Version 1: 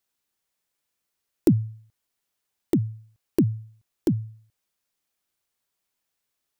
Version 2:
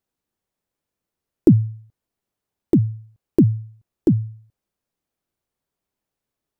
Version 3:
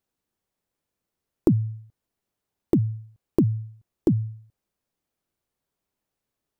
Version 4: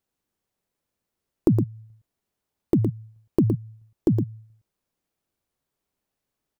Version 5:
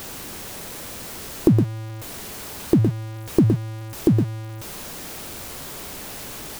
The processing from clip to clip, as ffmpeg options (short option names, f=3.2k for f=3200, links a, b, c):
-af "tiltshelf=f=970:g=7.5"
-af "acompressor=threshold=-18dB:ratio=3"
-af "aecho=1:1:114:0.473"
-af "aeval=exprs='val(0)+0.5*0.0266*sgn(val(0))':c=same,volume=3dB"